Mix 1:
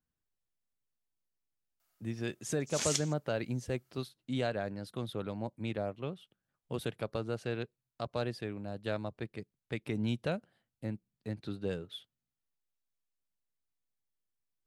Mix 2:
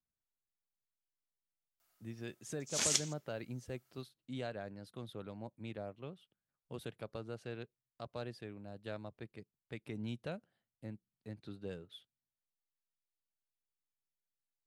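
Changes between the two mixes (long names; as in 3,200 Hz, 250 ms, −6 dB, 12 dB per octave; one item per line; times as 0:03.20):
speech −8.5 dB
reverb: on, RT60 0.75 s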